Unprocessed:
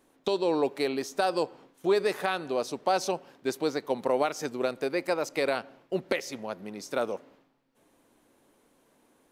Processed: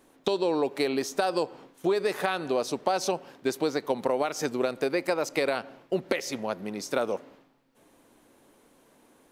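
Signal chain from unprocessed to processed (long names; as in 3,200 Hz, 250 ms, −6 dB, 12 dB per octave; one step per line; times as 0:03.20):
downward compressor, threshold −27 dBFS, peak gain reduction 7.5 dB
level +5 dB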